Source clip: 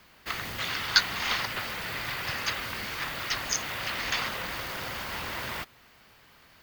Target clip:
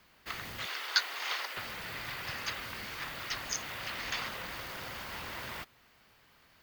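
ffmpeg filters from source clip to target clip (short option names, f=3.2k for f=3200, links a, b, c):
-filter_complex "[0:a]asettb=1/sr,asplit=3[a][b][c];[a]atrim=end=0.664[d];[b]atrim=start=0.66:end=1.57,asetpts=PTS-STARTPTS,afade=t=in:d=0.004:c=qsin,afade=t=out:st=0.906:d=0.004:c=qsin,highpass=f=380:w=0.5412,highpass=f=380:w=1.3066[e];[c]atrim=start=1.566[f];[d][e]acrossfade=d=0.004:c1=hsin:c2=qsin[g];[g][f]acrossfade=d=0.004:c1=qsin:c2=hsin,volume=-6.5dB"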